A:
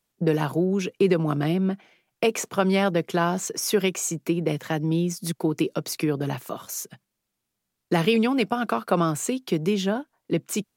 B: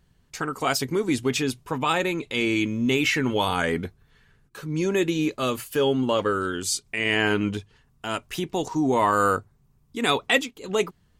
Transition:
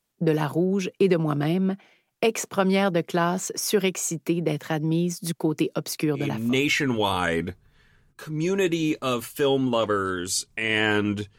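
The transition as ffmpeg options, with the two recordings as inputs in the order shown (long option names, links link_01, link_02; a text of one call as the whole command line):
ffmpeg -i cue0.wav -i cue1.wav -filter_complex "[0:a]apad=whole_dur=11.38,atrim=end=11.38,atrim=end=6.63,asetpts=PTS-STARTPTS[link_01];[1:a]atrim=start=2.49:end=7.74,asetpts=PTS-STARTPTS[link_02];[link_01][link_02]acrossfade=duration=0.5:curve1=qsin:curve2=qsin" out.wav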